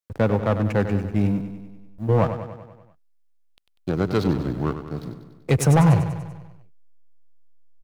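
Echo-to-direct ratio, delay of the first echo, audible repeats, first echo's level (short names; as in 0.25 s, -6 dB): -8.0 dB, 97 ms, 6, -10.0 dB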